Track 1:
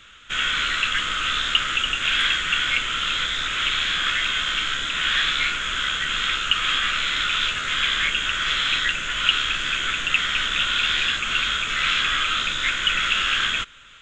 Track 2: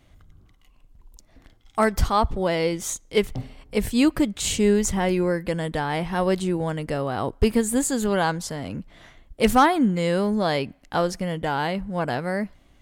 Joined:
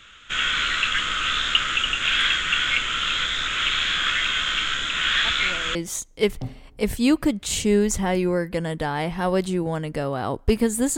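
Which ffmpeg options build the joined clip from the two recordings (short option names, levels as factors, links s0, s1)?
-filter_complex "[1:a]asplit=2[s0][s1];[0:a]apad=whole_dur=10.97,atrim=end=10.97,atrim=end=5.752[s2];[s1]atrim=start=2.688:end=7.91[s3];[s0]atrim=start=2.19:end=2.69,asetpts=PTS-STARTPTS,volume=0.158,afade=t=in:d=0.004:c=hsin,afade=t=out:st=0.496:d=0.004:c=hsin,adelay=231525S[s4];[s2][s3]acrossfade=d=0.004:c1=hsin:c2=hsin[s5];[s5][s4]amix=inputs=2:normalize=0"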